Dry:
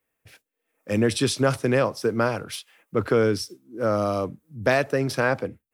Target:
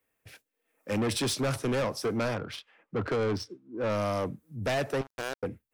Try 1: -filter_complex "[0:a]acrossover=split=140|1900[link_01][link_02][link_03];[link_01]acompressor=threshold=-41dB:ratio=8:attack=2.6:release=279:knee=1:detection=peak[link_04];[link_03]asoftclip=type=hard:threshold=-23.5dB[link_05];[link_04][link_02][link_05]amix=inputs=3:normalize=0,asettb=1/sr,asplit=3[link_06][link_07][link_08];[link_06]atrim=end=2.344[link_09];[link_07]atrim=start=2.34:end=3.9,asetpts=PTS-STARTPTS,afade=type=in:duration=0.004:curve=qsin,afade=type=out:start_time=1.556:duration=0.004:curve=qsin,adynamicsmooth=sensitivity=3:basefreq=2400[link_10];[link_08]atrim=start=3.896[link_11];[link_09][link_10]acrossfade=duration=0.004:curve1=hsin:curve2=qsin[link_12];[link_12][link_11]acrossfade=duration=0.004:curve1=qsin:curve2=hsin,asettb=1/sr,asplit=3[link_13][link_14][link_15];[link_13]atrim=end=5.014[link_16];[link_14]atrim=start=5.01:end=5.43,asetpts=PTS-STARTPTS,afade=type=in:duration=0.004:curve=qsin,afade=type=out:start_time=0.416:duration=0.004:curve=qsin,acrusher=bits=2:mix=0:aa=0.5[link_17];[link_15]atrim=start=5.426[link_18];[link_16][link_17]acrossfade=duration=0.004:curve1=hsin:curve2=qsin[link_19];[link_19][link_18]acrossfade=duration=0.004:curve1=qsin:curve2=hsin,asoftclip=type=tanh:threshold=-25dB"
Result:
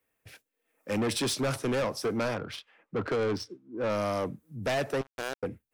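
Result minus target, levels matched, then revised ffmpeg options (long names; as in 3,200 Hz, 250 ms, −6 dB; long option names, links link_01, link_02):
downward compressor: peak gain reduction +8.5 dB
-filter_complex "[0:a]acrossover=split=140|1900[link_01][link_02][link_03];[link_01]acompressor=threshold=-31.5dB:ratio=8:attack=2.6:release=279:knee=1:detection=peak[link_04];[link_03]asoftclip=type=hard:threshold=-23.5dB[link_05];[link_04][link_02][link_05]amix=inputs=3:normalize=0,asettb=1/sr,asplit=3[link_06][link_07][link_08];[link_06]atrim=end=2.344[link_09];[link_07]atrim=start=2.34:end=3.9,asetpts=PTS-STARTPTS,afade=type=in:duration=0.004:curve=qsin,afade=type=out:start_time=1.556:duration=0.004:curve=qsin,adynamicsmooth=sensitivity=3:basefreq=2400[link_10];[link_08]atrim=start=3.896[link_11];[link_09][link_10]acrossfade=duration=0.004:curve1=hsin:curve2=qsin[link_12];[link_12][link_11]acrossfade=duration=0.004:curve1=qsin:curve2=hsin,asettb=1/sr,asplit=3[link_13][link_14][link_15];[link_13]atrim=end=5.014[link_16];[link_14]atrim=start=5.01:end=5.43,asetpts=PTS-STARTPTS,afade=type=in:duration=0.004:curve=qsin,afade=type=out:start_time=0.416:duration=0.004:curve=qsin,acrusher=bits=2:mix=0:aa=0.5[link_17];[link_15]atrim=start=5.426[link_18];[link_16][link_17]acrossfade=duration=0.004:curve1=hsin:curve2=qsin[link_19];[link_19][link_18]acrossfade=duration=0.004:curve1=qsin:curve2=hsin,asoftclip=type=tanh:threshold=-25dB"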